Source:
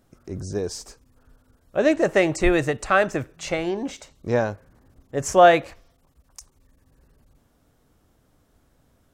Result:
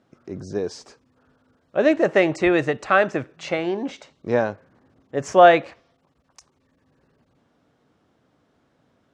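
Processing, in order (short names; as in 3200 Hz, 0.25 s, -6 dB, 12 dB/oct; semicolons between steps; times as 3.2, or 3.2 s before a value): BPF 150–4200 Hz; gain +1.5 dB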